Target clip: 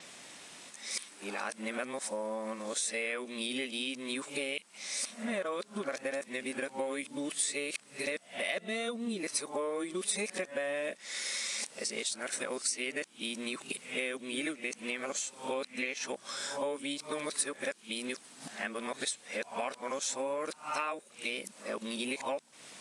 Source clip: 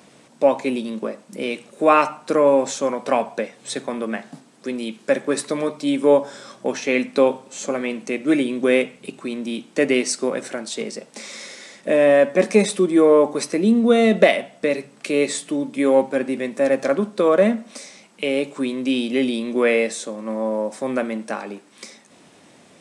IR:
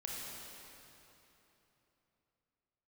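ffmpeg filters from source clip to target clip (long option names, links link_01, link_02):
-af "areverse,tiltshelf=frequency=900:gain=-8,acompressor=threshold=-31dB:ratio=6,adynamicequalizer=threshold=0.00158:dfrequency=9400:dqfactor=4.5:tfrequency=9400:tqfactor=4.5:attack=5:release=100:ratio=0.375:range=3.5:mode=boostabove:tftype=bell,volume=-2.5dB"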